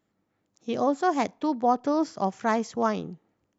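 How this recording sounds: noise floor -77 dBFS; spectral tilt -4.5 dB/oct

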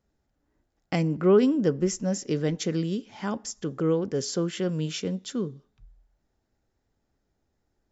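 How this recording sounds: noise floor -77 dBFS; spectral tilt -6.0 dB/oct

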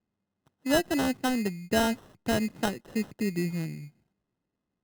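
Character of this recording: aliases and images of a low sample rate 2300 Hz, jitter 0%

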